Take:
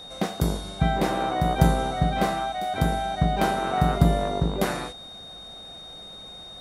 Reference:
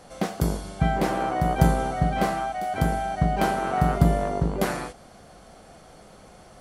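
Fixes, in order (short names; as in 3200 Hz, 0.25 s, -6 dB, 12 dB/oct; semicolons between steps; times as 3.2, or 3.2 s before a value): notch 3700 Hz, Q 30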